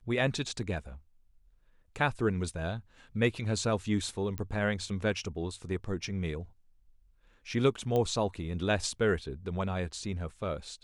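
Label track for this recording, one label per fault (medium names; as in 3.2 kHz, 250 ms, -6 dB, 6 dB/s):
4.380000	4.380000	pop -22 dBFS
7.960000	7.960000	pop -19 dBFS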